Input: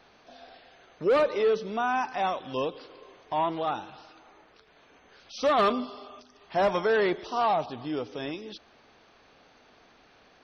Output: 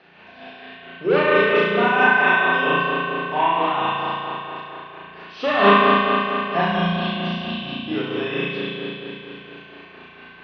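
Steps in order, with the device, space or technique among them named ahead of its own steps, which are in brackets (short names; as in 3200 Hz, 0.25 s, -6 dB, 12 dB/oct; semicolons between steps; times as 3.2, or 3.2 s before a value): 6.61–7.88 elliptic band-stop 250–3100 Hz; combo amplifier with spring reverb and tremolo (spring tank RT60 3.4 s, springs 35 ms, chirp 70 ms, DRR -9.5 dB; tremolo 4.4 Hz, depth 46%; speaker cabinet 110–4400 Hz, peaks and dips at 110 Hz -7 dB, 180 Hz +7 dB, 390 Hz +8 dB, 670 Hz +4 dB, 1700 Hz +6 dB, 2700 Hz +8 dB); dynamic EQ 360 Hz, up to -4 dB, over -25 dBFS, Q 0.72; flutter echo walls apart 5.9 m, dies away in 0.89 s; gain +1 dB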